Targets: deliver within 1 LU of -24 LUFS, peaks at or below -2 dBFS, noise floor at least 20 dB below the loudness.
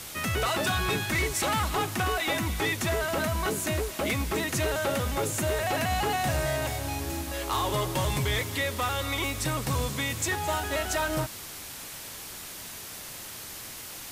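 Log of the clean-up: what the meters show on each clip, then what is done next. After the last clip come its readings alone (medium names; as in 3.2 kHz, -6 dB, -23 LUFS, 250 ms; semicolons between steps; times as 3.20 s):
noise floor -41 dBFS; noise floor target -49 dBFS; loudness -29.0 LUFS; peak level -18.5 dBFS; loudness target -24.0 LUFS
-> noise reduction 8 dB, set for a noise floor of -41 dBFS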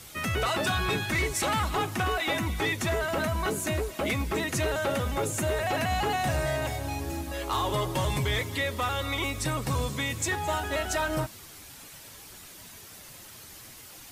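noise floor -47 dBFS; noise floor target -49 dBFS
-> noise reduction 6 dB, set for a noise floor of -47 dBFS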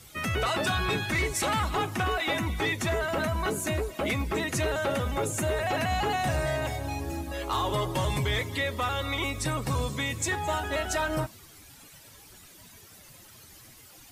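noise floor -52 dBFS; loudness -29.0 LUFS; peak level -19.0 dBFS; loudness target -24.0 LUFS
-> trim +5 dB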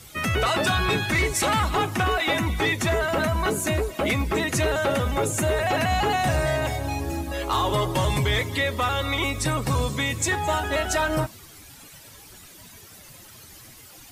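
loudness -24.0 LUFS; peak level -14.0 dBFS; noise floor -47 dBFS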